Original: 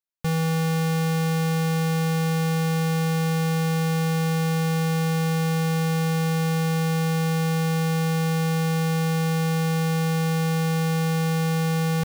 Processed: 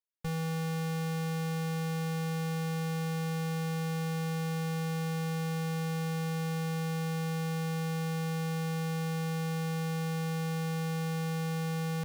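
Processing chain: tube stage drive 27 dB, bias 0.65; gain -4.5 dB

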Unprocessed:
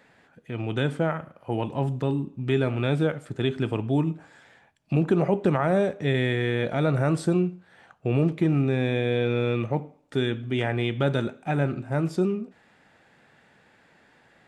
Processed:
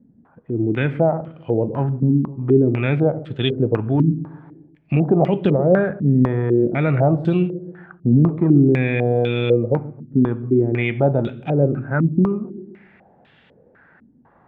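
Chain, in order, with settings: low shelf 310 Hz +7 dB; on a send: dark delay 0.13 s, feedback 49%, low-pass 440 Hz, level -13.5 dB; on the sum: stepped low-pass 4 Hz 240–3200 Hz

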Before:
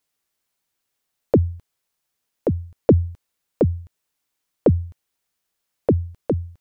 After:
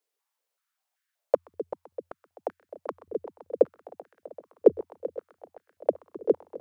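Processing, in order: multi-head echo 0.129 s, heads all three, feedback 74%, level -19 dB; stepped high-pass 5.2 Hz 420–1600 Hz; gain -8 dB

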